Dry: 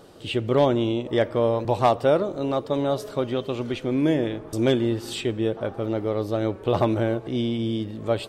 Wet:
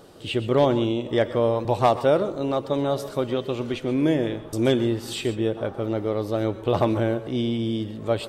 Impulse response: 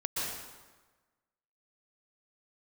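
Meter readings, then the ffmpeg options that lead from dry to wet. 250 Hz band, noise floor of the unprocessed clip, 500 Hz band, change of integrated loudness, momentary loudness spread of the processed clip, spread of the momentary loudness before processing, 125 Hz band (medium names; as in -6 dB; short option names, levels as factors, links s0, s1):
0.0 dB, -41 dBFS, +0.5 dB, 0.0 dB, 7 LU, 7 LU, 0.0 dB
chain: -filter_complex "[0:a]asplit=2[s0][s1];[s1]highshelf=f=7200:g=10[s2];[1:a]atrim=start_sample=2205,afade=t=out:st=0.19:d=0.01,atrim=end_sample=8820[s3];[s2][s3]afir=irnorm=-1:irlink=0,volume=0.237[s4];[s0][s4]amix=inputs=2:normalize=0,volume=0.841"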